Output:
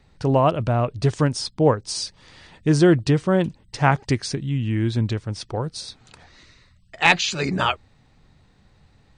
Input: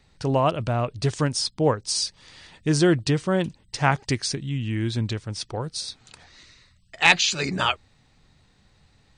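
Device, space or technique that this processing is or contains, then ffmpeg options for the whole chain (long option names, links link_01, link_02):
behind a face mask: -af "highshelf=frequency=2200:gain=-8,volume=4dB"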